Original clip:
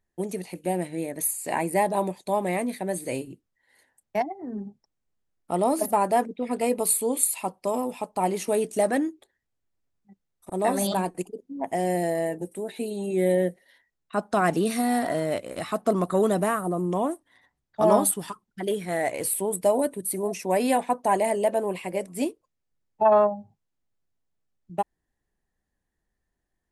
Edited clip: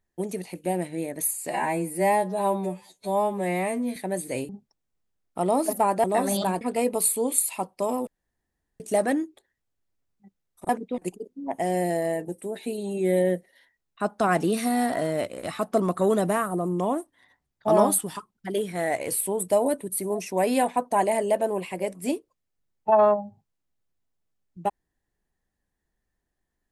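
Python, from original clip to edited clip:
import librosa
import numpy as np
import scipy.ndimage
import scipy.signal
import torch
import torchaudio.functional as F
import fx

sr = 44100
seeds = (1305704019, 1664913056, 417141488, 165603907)

y = fx.edit(x, sr, fx.stretch_span(start_s=1.5, length_s=1.23, factor=2.0),
    fx.cut(start_s=3.26, length_s=1.36),
    fx.swap(start_s=6.17, length_s=0.29, other_s=10.54, other_length_s=0.57),
    fx.room_tone_fill(start_s=7.92, length_s=0.73), tone=tone)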